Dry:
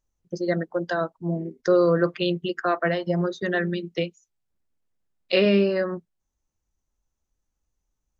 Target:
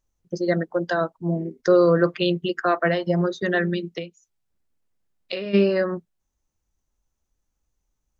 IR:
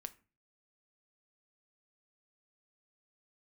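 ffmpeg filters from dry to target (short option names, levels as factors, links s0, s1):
-filter_complex "[0:a]asplit=3[s0][s1][s2];[s0]afade=t=out:st=3.89:d=0.02[s3];[s1]acompressor=threshold=0.0282:ratio=6,afade=t=in:st=3.89:d=0.02,afade=t=out:st=5.53:d=0.02[s4];[s2]afade=t=in:st=5.53:d=0.02[s5];[s3][s4][s5]amix=inputs=3:normalize=0,volume=1.33"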